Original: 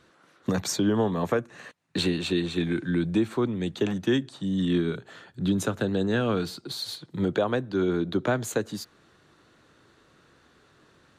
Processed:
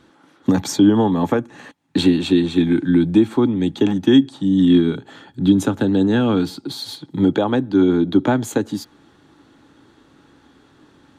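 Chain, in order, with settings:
low-shelf EQ 210 Hz +4 dB
hollow resonant body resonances 280/840/3,300 Hz, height 12 dB, ringing for 45 ms
level +3 dB

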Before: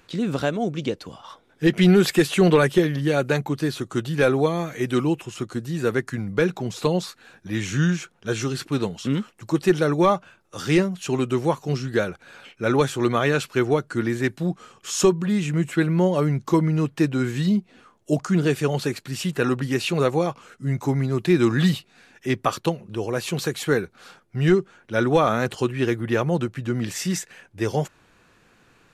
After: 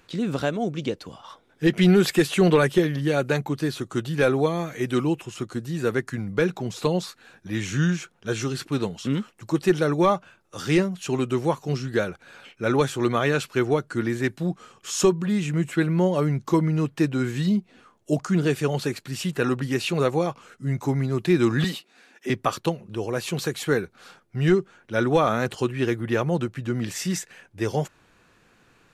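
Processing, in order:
0:21.64–0:22.30: high-pass filter 230 Hz 24 dB per octave
level −1.5 dB

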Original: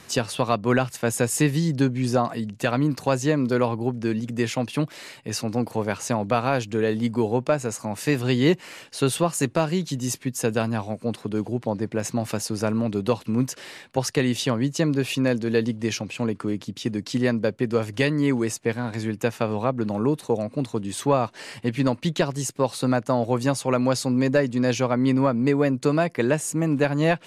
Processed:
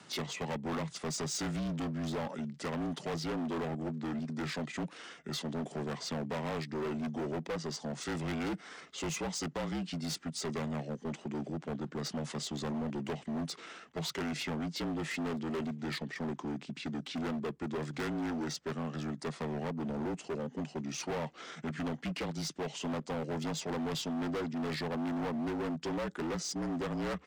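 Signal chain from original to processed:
pitch shifter −6 semitones
frequency shifter +71 Hz
gain into a clipping stage and back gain 25.5 dB
level −7.5 dB

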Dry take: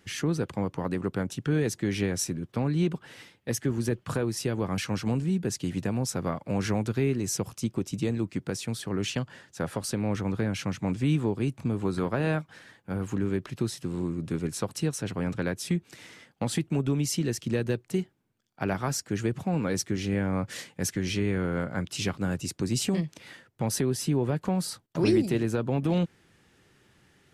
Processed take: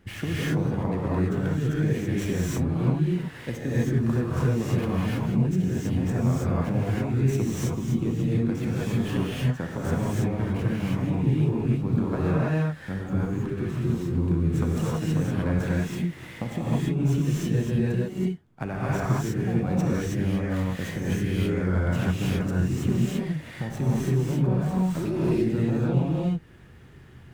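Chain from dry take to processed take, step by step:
running median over 9 samples
low-shelf EQ 180 Hz +11.5 dB
downward compressor, threshold −28 dBFS, peak gain reduction 12.5 dB
reverb whose tail is shaped and stops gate 350 ms rising, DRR −7.5 dB

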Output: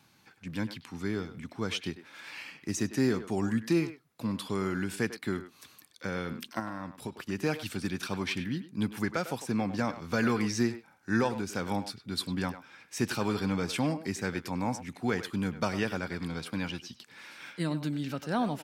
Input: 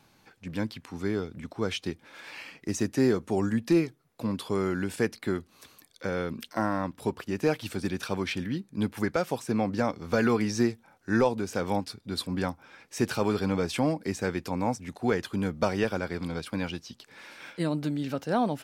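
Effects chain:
high-pass filter 90 Hz
parametric band 520 Hz −7 dB 1.5 octaves
0:06.59–0:07.20: downward compressor 4 to 1, threshold −35 dBFS, peak gain reduction 8 dB
far-end echo of a speakerphone 100 ms, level −11 dB

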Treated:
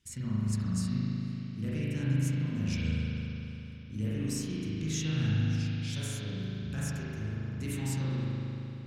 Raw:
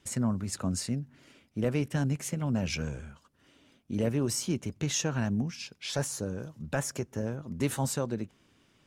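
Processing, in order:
guitar amp tone stack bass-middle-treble 6-0-2
spring reverb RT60 3.4 s, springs 38 ms, chirp 35 ms, DRR −9 dB
level +7.5 dB

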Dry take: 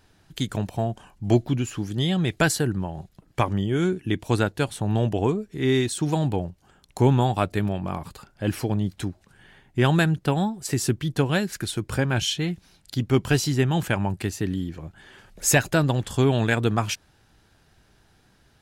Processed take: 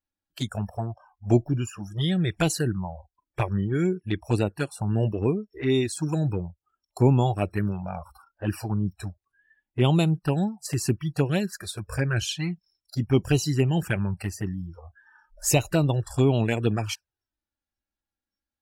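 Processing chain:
noise reduction from a noise print of the clip's start 30 dB
flanger swept by the level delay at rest 3.6 ms, full sweep at −17 dBFS

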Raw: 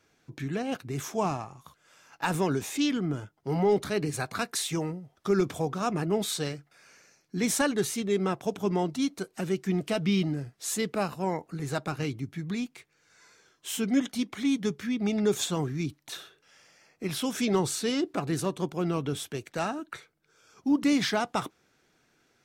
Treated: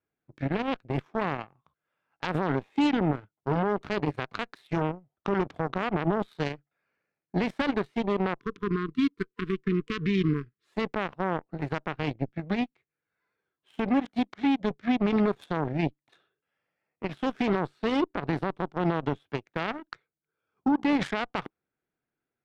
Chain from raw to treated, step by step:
high-frequency loss of the air 440 metres
brickwall limiter −25 dBFS, peak gain reduction 10 dB
harmonic generator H 3 −10 dB, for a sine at −25 dBFS
time-frequency box erased 0:08.40–0:10.66, 460–1,000 Hz
level +8 dB

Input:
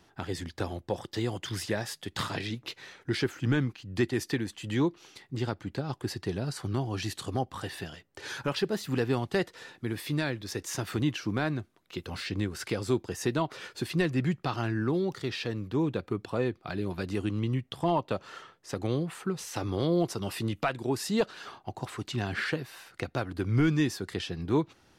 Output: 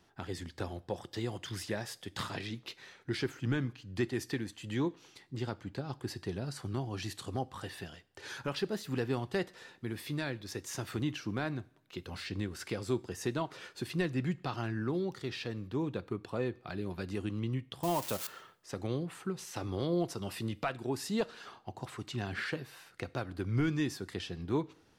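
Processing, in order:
0:17.83–0:18.27: spike at every zero crossing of −22.5 dBFS
coupled-rooms reverb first 0.51 s, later 1.6 s, from −20 dB, DRR 17.5 dB
level −5.5 dB

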